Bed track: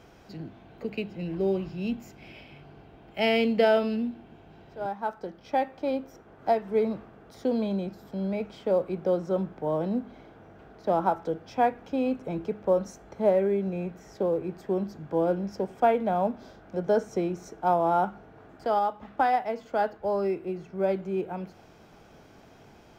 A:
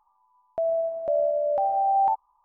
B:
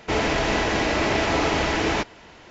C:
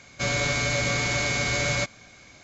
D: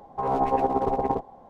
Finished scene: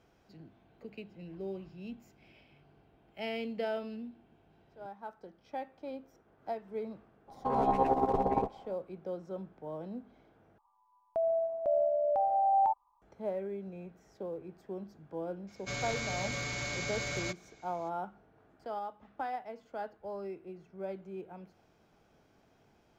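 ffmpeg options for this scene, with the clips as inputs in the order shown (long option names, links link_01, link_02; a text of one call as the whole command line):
ffmpeg -i bed.wav -i cue0.wav -i cue1.wav -i cue2.wav -i cue3.wav -filter_complex "[0:a]volume=-13.5dB[link_01];[3:a]asoftclip=type=hard:threshold=-17dB[link_02];[link_01]asplit=2[link_03][link_04];[link_03]atrim=end=10.584[link_05];[1:a]atrim=end=2.44,asetpts=PTS-STARTPTS,volume=-5dB[link_06];[link_04]atrim=start=13.016[link_07];[4:a]atrim=end=1.49,asetpts=PTS-STARTPTS,volume=-4.5dB,afade=type=in:duration=0.02,afade=type=out:start_time=1.47:duration=0.02,adelay=7270[link_08];[link_02]atrim=end=2.43,asetpts=PTS-STARTPTS,volume=-11.5dB,afade=type=in:duration=0.02,afade=type=out:start_time=2.41:duration=0.02,adelay=15470[link_09];[link_05][link_06]acrossfade=duration=0.004:curve1=hsin:curve2=hsin[link_10];[link_10][link_07]acrossfade=duration=0.004:curve1=hsin:curve2=hsin[link_11];[link_11][link_08][link_09]amix=inputs=3:normalize=0" out.wav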